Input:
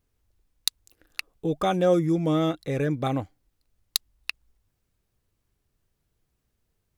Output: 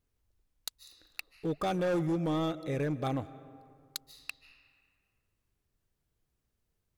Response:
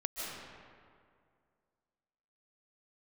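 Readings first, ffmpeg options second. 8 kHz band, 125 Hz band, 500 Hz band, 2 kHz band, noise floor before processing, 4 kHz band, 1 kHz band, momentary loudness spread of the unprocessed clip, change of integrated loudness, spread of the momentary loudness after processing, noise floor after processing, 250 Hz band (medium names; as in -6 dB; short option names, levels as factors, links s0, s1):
-12.0 dB, -6.5 dB, -8.0 dB, -6.0 dB, -77 dBFS, -12.0 dB, -6.5 dB, 15 LU, -7.5 dB, 16 LU, -81 dBFS, -7.0 dB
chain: -filter_complex "[0:a]asplit=2[s0][s1];[1:a]atrim=start_sample=2205[s2];[s1][s2]afir=irnorm=-1:irlink=0,volume=0.126[s3];[s0][s3]amix=inputs=2:normalize=0,asoftclip=type=hard:threshold=0.106,volume=0.473"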